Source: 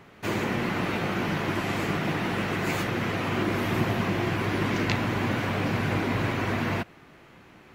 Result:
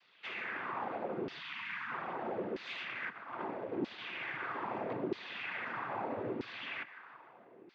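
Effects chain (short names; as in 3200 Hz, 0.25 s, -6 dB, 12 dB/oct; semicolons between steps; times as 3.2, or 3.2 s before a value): 1.39–1.91 elliptic band-stop 240–980 Hz; 3.09–3.98 gate -26 dBFS, range -16 dB; on a send: thinning echo 0.154 s, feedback 75%, high-pass 640 Hz, level -16.5 dB; on the sum: noise vocoder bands 16; LFO band-pass saw down 0.78 Hz 360–4900 Hz; air absorption 200 m; in parallel at -1.5 dB: compressor, threshold -50 dBFS, peak gain reduction 19 dB; on the sum: gain -2 dB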